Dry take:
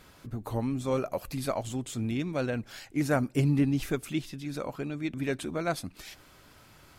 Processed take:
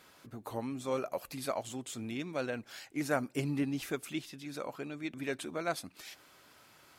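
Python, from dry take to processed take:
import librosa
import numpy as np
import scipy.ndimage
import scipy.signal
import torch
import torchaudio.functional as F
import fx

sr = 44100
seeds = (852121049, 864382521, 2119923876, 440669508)

y = fx.highpass(x, sr, hz=380.0, slope=6)
y = F.gain(torch.from_numpy(y), -2.5).numpy()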